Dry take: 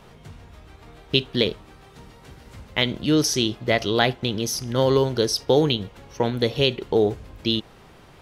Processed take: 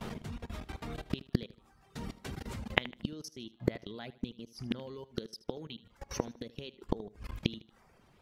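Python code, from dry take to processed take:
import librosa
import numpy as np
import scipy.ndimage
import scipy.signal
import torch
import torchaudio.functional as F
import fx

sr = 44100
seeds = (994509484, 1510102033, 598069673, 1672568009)

p1 = fx.dereverb_blind(x, sr, rt60_s=0.68)
p2 = fx.peak_eq(p1, sr, hz=220.0, db=8.0, octaves=0.44)
p3 = fx.level_steps(p2, sr, step_db=24)
p4 = fx.gate_flip(p3, sr, shuts_db=-24.0, range_db=-28)
p5 = p4 + fx.echo_feedback(p4, sr, ms=77, feedback_pct=38, wet_db=-18.0, dry=0)
y = F.gain(torch.from_numpy(p5), 8.0).numpy()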